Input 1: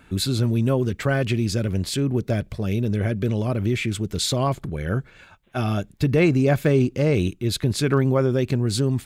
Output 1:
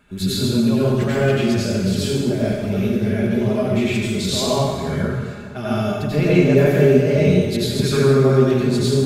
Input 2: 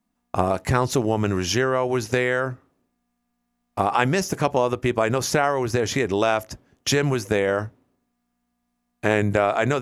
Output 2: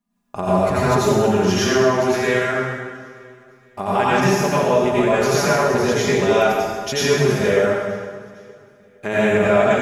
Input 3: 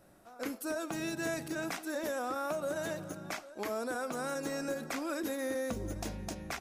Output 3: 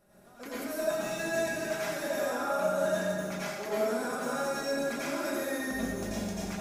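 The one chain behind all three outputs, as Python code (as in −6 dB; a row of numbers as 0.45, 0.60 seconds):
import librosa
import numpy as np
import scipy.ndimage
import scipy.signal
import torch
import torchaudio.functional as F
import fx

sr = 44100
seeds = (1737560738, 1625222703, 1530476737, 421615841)

p1 = x + 0.51 * np.pad(x, (int(4.9 * sr / 1000.0), 0))[:len(x)]
p2 = fx.dynamic_eq(p1, sr, hz=8900.0, q=2.7, threshold_db=-50.0, ratio=4.0, max_db=-4)
p3 = p2 + fx.echo_feedback(p2, sr, ms=462, feedback_pct=46, wet_db=-23.0, dry=0)
p4 = fx.rev_plate(p3, sr, seeds[0], rt60_s=1.6, hf_ratio=0.8, predelay_ms=75, drr_db=-9.0)
y = p4 * librosa.db_to_amplitude(-6.0)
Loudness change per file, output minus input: +4.5, +4.5, +5.0 LU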